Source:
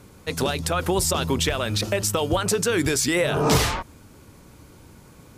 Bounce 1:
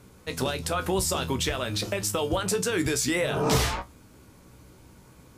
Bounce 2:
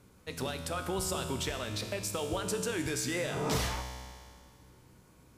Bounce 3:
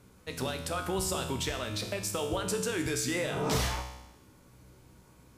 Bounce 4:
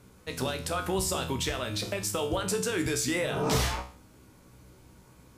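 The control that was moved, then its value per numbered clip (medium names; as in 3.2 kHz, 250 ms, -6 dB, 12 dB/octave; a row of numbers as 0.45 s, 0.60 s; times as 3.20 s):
feedback comb, decay: 0.17 s, 2 s, 0.92 s, 0.42 s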